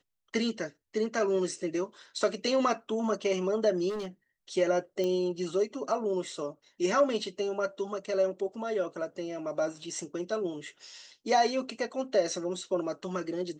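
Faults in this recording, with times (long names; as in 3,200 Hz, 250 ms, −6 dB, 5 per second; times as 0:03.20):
0:03.89–0:04.08: clipping −32 dBFS
0:05.04: click −21 dBFS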